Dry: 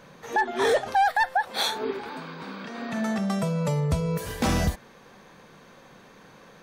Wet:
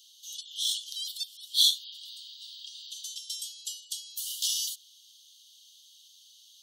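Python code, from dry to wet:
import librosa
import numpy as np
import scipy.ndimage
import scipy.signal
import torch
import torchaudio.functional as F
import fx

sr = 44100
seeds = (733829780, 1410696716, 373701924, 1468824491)

y = scipy.signal.sosfilt(scipy.signal.cheby1(10, 1.0, 2900.0, 'highpass', fs=sr, output='sos'), x)
y = F.gain(torch.from_numpy(y), 7.0).numpy()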